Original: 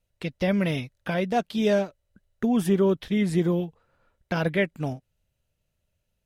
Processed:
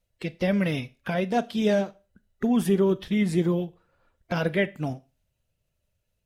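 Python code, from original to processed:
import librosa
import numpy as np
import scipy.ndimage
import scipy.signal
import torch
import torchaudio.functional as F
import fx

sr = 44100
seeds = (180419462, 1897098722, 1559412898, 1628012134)

y = fx.spec_quant(x, sr, step_db=15)
y = fx.rev_schroeder(y, sr, rt60_s=0.32, comb_ms=26, drr_db=17.0)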